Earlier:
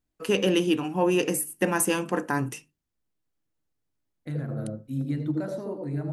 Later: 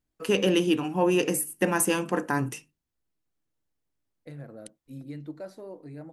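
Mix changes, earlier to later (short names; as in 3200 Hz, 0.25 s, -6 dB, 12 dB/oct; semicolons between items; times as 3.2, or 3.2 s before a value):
second voice -8.0 dB; reverb: off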